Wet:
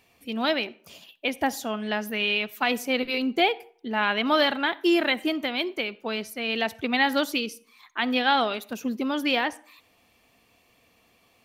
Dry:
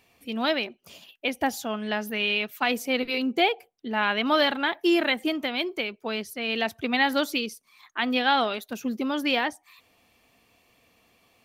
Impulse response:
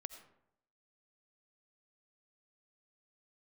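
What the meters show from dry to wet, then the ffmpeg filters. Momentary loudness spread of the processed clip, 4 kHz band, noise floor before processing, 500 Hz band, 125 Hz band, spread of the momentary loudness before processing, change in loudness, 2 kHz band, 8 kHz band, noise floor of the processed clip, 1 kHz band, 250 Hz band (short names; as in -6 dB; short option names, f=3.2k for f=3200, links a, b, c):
9 LU, +0.5 dB, -66 dBFS, +0.5 dB, n/a, 9 LU, +0.5 dB, +0.5 dB, +0.5 dB, -63 dBFS, +0.5 dB, +0.5 dB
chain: -filter_complex "[0:a]asplit=2[a][b];[1:a]atrim=start_sample=2205,asetrate=66150,aresample=44100[c];[b][c]afir=irnorm=-1:irlink=0,volume=-2dB[d];[a][d]amix=inputs=2:normalize=0,volume=-2dB"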